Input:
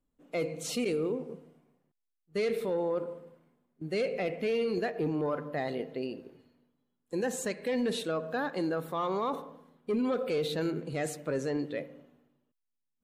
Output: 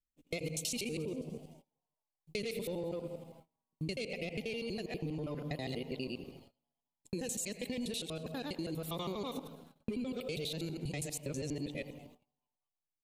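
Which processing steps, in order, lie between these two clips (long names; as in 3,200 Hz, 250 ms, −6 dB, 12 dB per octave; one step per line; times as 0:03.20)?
reversed piece by piece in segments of 81 ms
drawn EQ curve 150 Hz 0 dB, 1,600 Hz −15 dB, 2,400 Hz +3 dB, 10,000 Hz +7 dB
downward compressor 10 to 1, threshold −39 dBFS, peak gain reduction 10 dB
low-shelf EQ 89 Hz +9.5 dB
echo with shifted repeats 216 ms, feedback 52%, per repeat +150 Hz, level −22 dB
speech leveller within 4 dB 2 s
noise gate −59 dBFS, range −25 dB
level +3 dB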